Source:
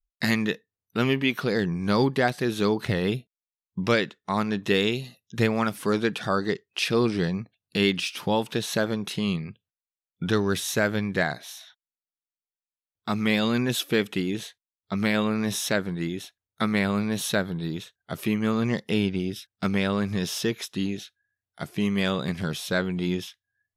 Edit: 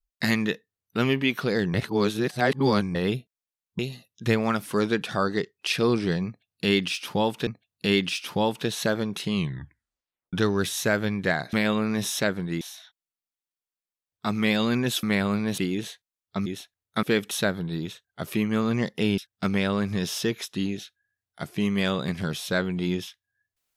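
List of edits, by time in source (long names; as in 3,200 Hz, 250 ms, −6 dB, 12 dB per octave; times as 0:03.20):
0:01.74–0:02.95: reverse
0:03.79–0:04.91: remove
0:07.38–0:08.59: repeat, 2 plays
0:09.27: tape stop 0.97 s
0:13.86–0:14.14: swap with 0:16.67–0:17.22
0:15.02–0:16.10: move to 0:11.44
0:19.09–0:19.38: remove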